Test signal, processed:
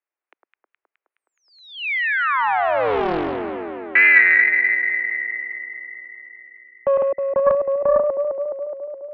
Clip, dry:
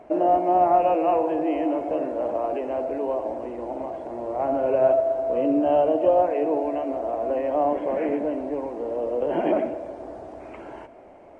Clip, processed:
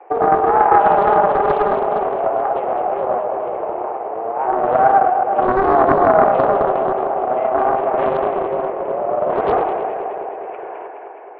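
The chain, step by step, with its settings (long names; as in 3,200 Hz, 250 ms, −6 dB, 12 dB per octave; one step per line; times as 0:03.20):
tape wow and flutter 84 cents
on a send: delay that swaps between a low-pass and a high-pass 105 ms, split 1,300 Hz, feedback 84%, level −3.5 dB
on the sum: single-sideband voice off tune +100 Hz 230–2,400 Hz
highs frequency-modulated by the lows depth 0.49 ms
level +4.5 dB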